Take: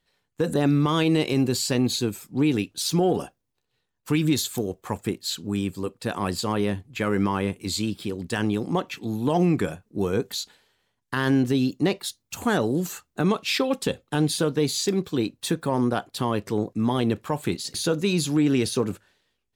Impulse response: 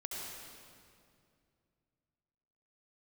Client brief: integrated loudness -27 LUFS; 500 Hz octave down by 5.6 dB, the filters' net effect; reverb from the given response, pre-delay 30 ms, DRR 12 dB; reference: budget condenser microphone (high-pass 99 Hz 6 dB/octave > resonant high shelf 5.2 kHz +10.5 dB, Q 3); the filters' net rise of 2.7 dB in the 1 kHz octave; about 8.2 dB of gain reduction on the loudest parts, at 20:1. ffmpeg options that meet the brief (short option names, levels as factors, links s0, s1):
-filter_complex "[0:a]equalizer=f=500:t=o:g=-8.5,equalizer=f=1000:t=o:g=6.5,acompressor=threshold=0.0501:ratio=20,asplit=2[s0][s1];[1:a]atrim=start_sample=2205,adelay=30[s2];[s1][s2]afir=irnorm=-1:irlink=0,volume=0.237[s3];[s0][s3]amix=inputs=2:normalize=0,highpass=f=99:p=1,highshelf=f=5200:t=q:w=3:g=10.5,volume=0.794"